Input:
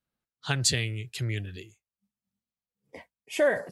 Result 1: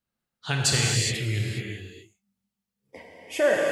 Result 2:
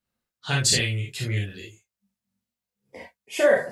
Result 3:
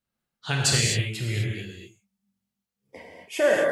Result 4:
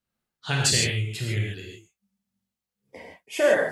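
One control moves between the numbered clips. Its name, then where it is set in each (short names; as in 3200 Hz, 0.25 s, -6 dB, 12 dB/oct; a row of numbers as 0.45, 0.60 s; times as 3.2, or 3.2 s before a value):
non-linear reverb, gate: 440, 90, 280, 180 ms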